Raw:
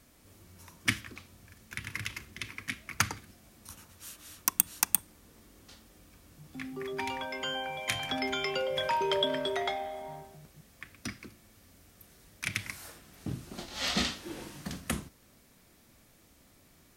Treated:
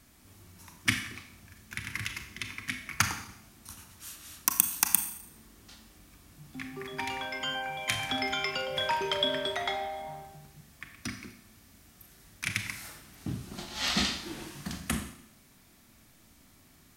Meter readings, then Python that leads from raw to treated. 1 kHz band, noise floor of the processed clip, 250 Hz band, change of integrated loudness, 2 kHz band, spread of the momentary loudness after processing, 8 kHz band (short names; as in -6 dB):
+0.5 dB, -60 dBFS, +0.5 dB, +1.5 dB, +2.5 dB, 19 LU, +2.5 dB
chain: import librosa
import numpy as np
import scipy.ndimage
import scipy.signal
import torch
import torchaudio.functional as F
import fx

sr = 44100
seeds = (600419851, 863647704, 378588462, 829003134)

y = fx.peak_eq(x, sr, hz=500.0, db=-8.5, octaves=0.53)
y = fx.rev_schroeder(y, sr, rt60_s=0.73, comb_ms=28, drr_db=6.5)
y = y * 10.0 ** (1.5 / 20.0)